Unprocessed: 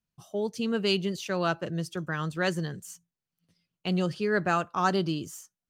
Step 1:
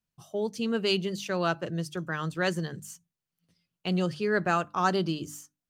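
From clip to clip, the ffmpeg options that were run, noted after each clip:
-af "bandreject=f=50:t=h:w=6,bandreject=f=100:t=h:w=6,bandreject=f=150:t=h:w=6,bandreject=f=200:t=h:w=6,bandreject=f=250:t=h:w=6,bandreject=f=300:t=h:w=6"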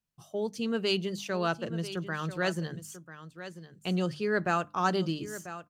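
-af "aecho=1:1:992:0.224,volume=-2dB"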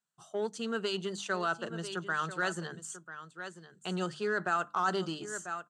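-af "alimiter=limit=-22dB:level=0:latency=1:release=30,aeval=exprs='0.0794*(cos(1*acos(clip(val(0)/0.0794,-1,1)))-cos(1*PI/2))+0.00251*(cos(6*acos(clip(val(0)/0.0794,-1,1)))-cos(6*PI/2))':c=same,highpass=260,equalizer=f=280:t=q:w=4:g=-9,equalizer=f=530:t=q:w=4:g=-6,equalizer=f=1.4k:t=q:w=4:g=7,equalizer=f=2.3k:t=q:w=4:g=-9,equalizer=f=5.2k:t=q:w=4:g=-7,equalizer=f=7.8k:t=q:w=4:g=7,lowpass=f=8.9k:w=0.5412,lowpass=f=8.9k:w=1.3066,volume=1.5dB"

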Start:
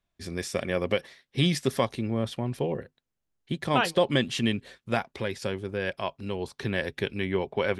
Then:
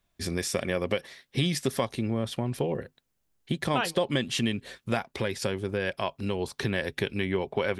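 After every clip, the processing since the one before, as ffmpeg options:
-af "highshelf=f=8.2k:g=6,acompressor=threshold=-33dB:ratio=2.5,volume=6dB"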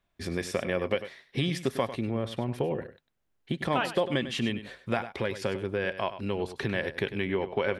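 -af "bass=f=250:g=-3,treble=f=4k:g=-10,aecho=1:1:99:0.237"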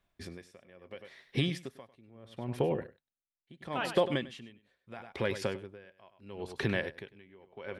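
-af "aeval=exprs='val(0)*pow(10,-28*(0.5-0.5*cos(2*PI*0.75*n/s))/20)':c=same"

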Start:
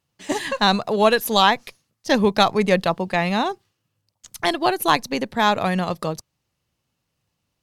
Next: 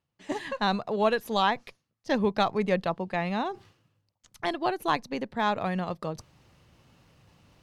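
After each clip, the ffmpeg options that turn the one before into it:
-af "lowpass=f=2.5k:p=1,areverse,acompressor=mode=upward:threshold=-31dB:ratio=2.5,areverse,volume=-7.5dB"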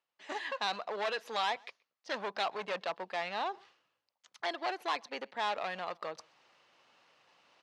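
-filter_complex "[0:a]acrossover=split=4000[a][b];[a]asoftclip=type=hard:threshold=-27.5dB[c];[c][b]amix=inputs=2:normalize=0,highpass=650,lowpass=5.1k,asplit=2[d][e];[e]adelay=128.3,volume=-28dB,highshelf=f=4k:g=-2.89[f];[d][f]amix=inputs=2:normalize=0"

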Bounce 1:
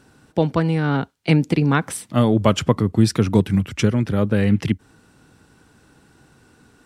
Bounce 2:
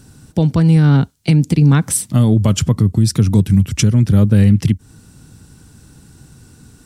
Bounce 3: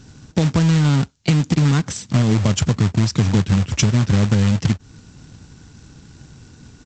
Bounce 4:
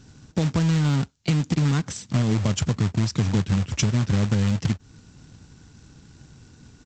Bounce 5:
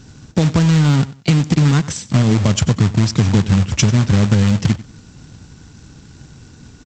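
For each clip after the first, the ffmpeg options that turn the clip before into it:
-af "bass=f=250:g=15,treble=f=4k:g=14,alimiter=limit=-3.5dB:level=0:latency=1:release=242"
-af "acompressor=threshold=-13dB:ratio=4,aresample=16000,acrusher=bits=3:mode=log:mix=0:aa=0.000001,aresample=44100"
-af "asoftclip=type=hard:threshold=-6.5dB,volume=-5.5dB"
-af "aecho=1:1:94|188:0.126|0.0315,volume=8dB"

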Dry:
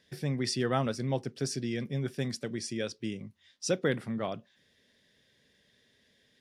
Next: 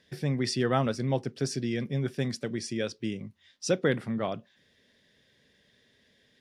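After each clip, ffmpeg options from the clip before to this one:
-af "highshelf=f=6.3k:g=-6,volume=3dB"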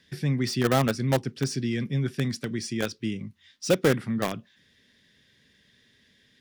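-filter_complex "[0:a]acrossover=split=420|850[a][b][c];[b]acrusher=bits=4:mix=0:aa=0.000001[d];[c]asoftclip=type=tanh:threshold=-31dB[e];[a][d][e]amix=inputs=3:normalize=0,volume=4dB"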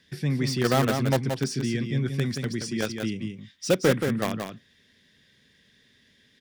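-af "aecho=1:1:177:0.501"

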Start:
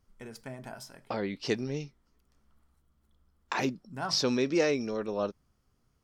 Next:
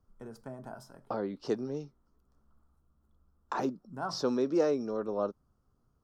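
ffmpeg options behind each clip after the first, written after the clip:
-filter_complex "[0:a]equalizer=f=1.3k:t=o:w=1.3:g=-6.5,acrossover=split=200|1800[a][b][c];[a]acompressor=threshold=-49dB:ratio=6[d];[d][b][c]amix=inputs=3:normalize=0,highshelf=f=1.7k:t=q:w=3:g=-9"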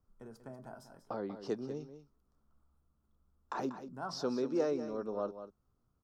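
-af "aecho=1:1:190:0.282,volume=-5dB"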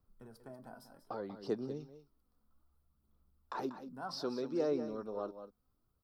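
-af "aexciter=amount=1.2:drive=4.4:freq=3.7k,aphaser=in_gain=1:out_gain=1:delay=4.1:decay=0.35:speed=0.63:type=sinusoidal,volume=-3dB"

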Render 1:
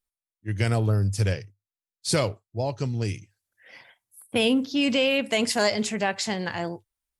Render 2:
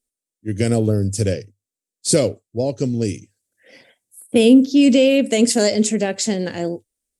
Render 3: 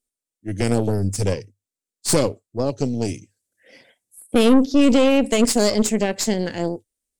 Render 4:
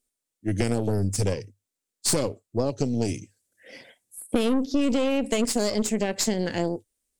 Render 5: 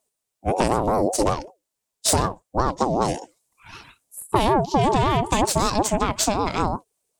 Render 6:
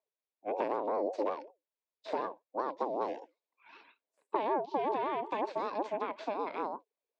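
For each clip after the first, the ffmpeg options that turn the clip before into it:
-af "equalizer=f=250:t=o:w=1:g=11,equalizer=f=500:t=o:w=1:g=10,equalizer=f=1k:t=o:w=1:g=-10,equalizer=f=8k:t=o:w=1:g=12"
-af "aeval=exprs='(tanh(3.98*val(0)+0.7)-tanh(0.7))/3.98':c=same,volume=2dB"
-af "acompressor=threshold=-25dB:ratio=4,volume=3.5dB"
-af "aeval=exprs='val(0)*sin(2*PI*530*n/s+530*0.25/5.3*sin(2*PI*5.3*n/s))':c=same,volume=6.5dB"
-filter_complex "[0:a]highpass=f=330:w=0.5412,highpass=f=330:w=1.3066,equalizer=f=360:t=q:w=4:g=-4,equalizer=f=750:t=q:w=4:g=-5,equalizer=f=1.3k:t=q:w=4:g=-9,equalizer=f=1.9k:t=q:w=4:g=-4,equalizer=f=3k:t=q:w=4:g=-8,lowpass=f=3.3k:w=0.5412,lowpass=f=3.3k:w=1.3066,acrossover=split=2600[a][b];[b]acompressor=threshold=-47dB:ratio=4:attack=1:release=60[c];[a][c]amix=inputs=2:normalize=0,volume=-8dB"

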